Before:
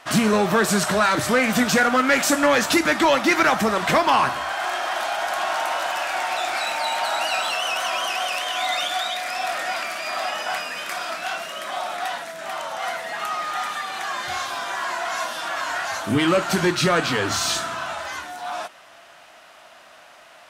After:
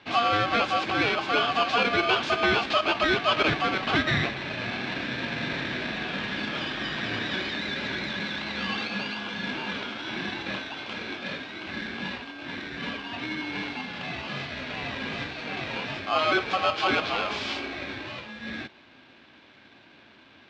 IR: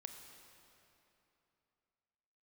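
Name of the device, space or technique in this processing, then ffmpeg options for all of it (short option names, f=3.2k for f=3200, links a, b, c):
ring modulator pedal into a guitar cabinet: -af "aeval=exprs='val(0)*sgn(sin(2*PI*940*n/s))':c=same,highpass=100,equalizer=f=170:t=q:w=4:g=-4,equalizer=f=480:t=q:w=4:g=-4,equalizer=f=1.9k:t=q:w=4:g=-6,lowpass=f=3.8k:w=0.5412,lowpass=f=3.8k:w=1.3066,volume=-3.5dB"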